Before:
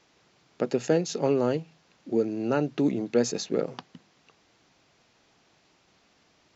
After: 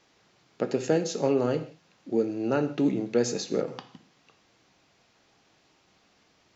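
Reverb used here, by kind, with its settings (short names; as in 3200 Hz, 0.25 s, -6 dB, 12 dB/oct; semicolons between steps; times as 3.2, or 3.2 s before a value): non-linear reverb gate 0.2 s falling, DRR 7.5 dB; gain -1 dB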